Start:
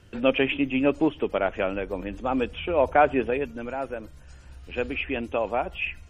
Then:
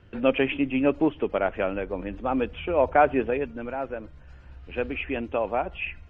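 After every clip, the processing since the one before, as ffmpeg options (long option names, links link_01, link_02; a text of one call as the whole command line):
ffmpeg -i in.wav -af "lowpass=2700" out.wav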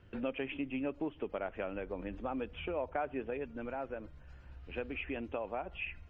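ffmpeg -i in.wav -af "acompressor=threshold=-30dB:ratio=3,volume=-6dB" out.wav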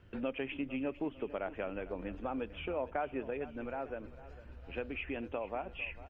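ffmpeg -i in.wav -af "aecho=1:1:452|904|1356|1808:0.15|0.0718|0.0345|0.0165" out.wav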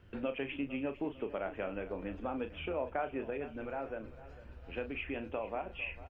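ffmpeg -i in.wav -filter_complex "[0:a]asplit=2[link_01][link_02];[link_02]adelay=36,volume=-9dB[link_03];[link_01][link_03]amix=inputs=2:normalize=0" out.wav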